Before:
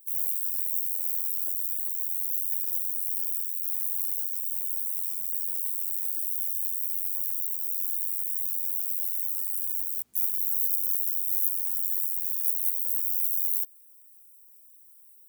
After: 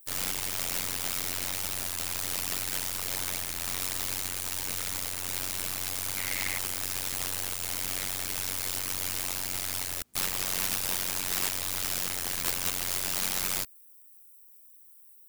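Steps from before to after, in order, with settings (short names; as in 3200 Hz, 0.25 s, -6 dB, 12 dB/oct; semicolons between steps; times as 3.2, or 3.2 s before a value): tracing distortion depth 0.16 ms; 6.17–6.58 bell 2100 Hz +12.5 dB 0.44 oct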